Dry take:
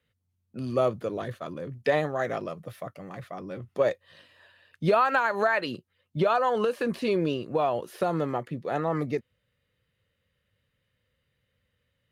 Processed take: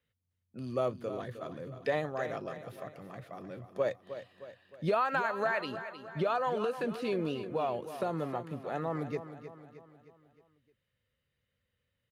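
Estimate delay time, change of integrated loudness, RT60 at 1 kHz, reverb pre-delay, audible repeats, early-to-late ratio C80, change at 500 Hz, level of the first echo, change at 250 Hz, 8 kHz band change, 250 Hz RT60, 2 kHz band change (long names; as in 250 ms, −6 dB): 310 ms, −7.0 dB, no reverb audible, no reverb audible, 4, no reverb audible, −6.5 dB, −11.5 dB, −6.5 dB, can't be measured, no reverb audible, −6.5 dB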